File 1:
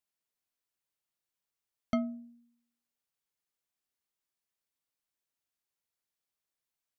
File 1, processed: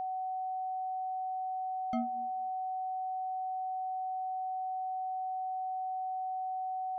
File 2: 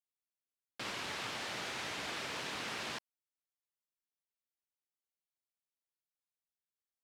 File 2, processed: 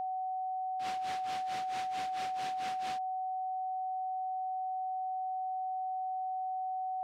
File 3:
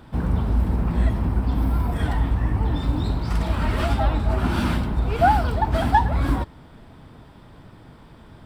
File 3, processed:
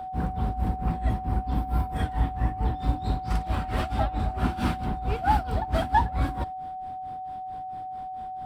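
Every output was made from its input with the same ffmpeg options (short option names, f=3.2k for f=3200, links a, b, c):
-af "tremolo=f=4.5:d=0.9,aeval=exprs='val(0)+0.0282*sin(2*PI*750*n/s)':c=same,volume=-2dB"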